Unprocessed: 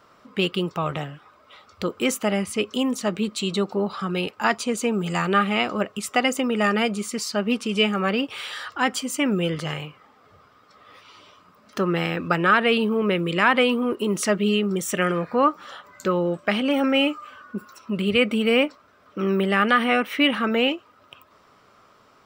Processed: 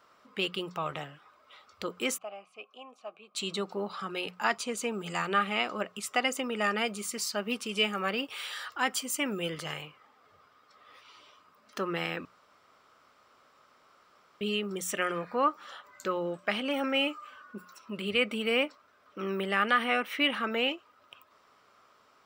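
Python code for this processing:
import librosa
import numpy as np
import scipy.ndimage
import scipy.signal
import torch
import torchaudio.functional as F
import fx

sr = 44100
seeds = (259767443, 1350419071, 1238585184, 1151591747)

y = fx.vowel_filter(x, sr, vowel='a', at=(2.18, 3.35))
y = fx.high_shelf(y, sr, hz=11000.0, db=10.5, at=(6.88, 9.82))
y = fx.edit(y, sr, fx.room_tone_fill(start_s=12.25, length_s=2.16), tone=tone)
y = fx.low_shelf(y, sr, hz=360.0, db=-9.5)
y = fx.hum_notches(y, sr, base_hz=60, count=3)
y = F.gain(torch.from_numpy(y), -5.5).numpy()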